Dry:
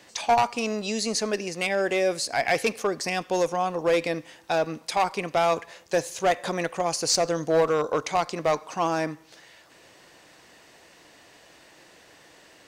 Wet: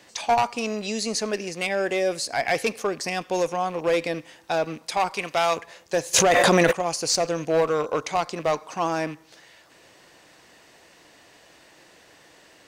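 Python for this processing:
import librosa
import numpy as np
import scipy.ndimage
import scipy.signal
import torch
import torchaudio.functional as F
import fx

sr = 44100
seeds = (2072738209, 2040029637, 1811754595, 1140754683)

y = fx.rattle_buzz(x, sr, strikes_db=-41.0, level_db=-35.0)
y = fx.tilt_shelf(y, sr, db=-5.0, hz=800.0, at=(5.14, 5.56))
y = fx.env_flatten(y, sr, amount_pct=100, at=(6.13, 6.71), fade=0.02)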